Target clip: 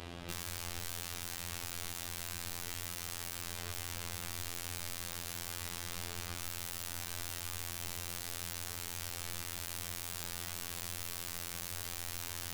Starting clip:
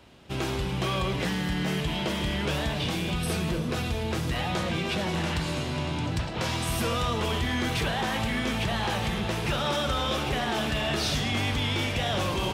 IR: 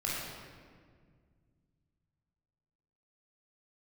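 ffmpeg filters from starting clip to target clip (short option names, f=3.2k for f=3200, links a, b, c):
-filter_complex "[0:a]aeval=exprs='(mod(53.1*val(0)+1,2)-1)/53.1':c=same,acrossover=split=130[a][b];[b]acompressor=threshold=-54dB:ratio=6[c];[a][c]amix=inputs=2:normalize=0,asplit=2[d][e];[1:a]atrim=start_sample=2205,afade=t=out:st=0.2:d=0.01,atrim=end_sample=9261,asetrate=25578,aresample=44100[f];[e][f]afir=irnorm=-1:irlink=0,volume=-16dB[g];[d][g]amix=inputs=2:normalize=0,afftfilt=real='hypot(re,im)*cos(PI*b)':imag='0':win_size=2048:overlap=0.75,aeval=exprs='0.0335*(cos(1*acos(clip(val(0)/0.0335,-1,1)))-cos(1*PI/2))+0.00266*(cos(3*acos(clip(val(0)/0.0335,-1,1)))-cos(3*PI/2))':c=same,volume=13.5dB"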